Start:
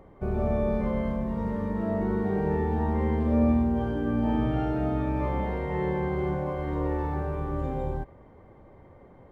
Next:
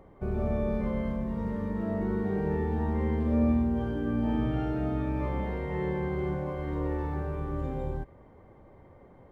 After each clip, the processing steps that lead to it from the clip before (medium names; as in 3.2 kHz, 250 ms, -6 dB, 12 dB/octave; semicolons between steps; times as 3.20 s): dynamic bell 780 Hz, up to -4 dB, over -46 dBFS, Q 1.4; trim -2 dB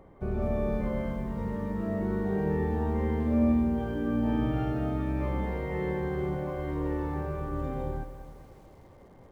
on a send at -15.5 dB: reverberation RT60 1.1 s, pre-delay 6 ms; on the sum: bit-crushed delay 208 ms, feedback 55%, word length 9-bit, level -13 dB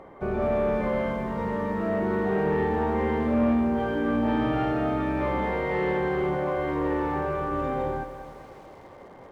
overdrive pedal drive 19 dB, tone 2.4 kHz, clips at -14 dBFS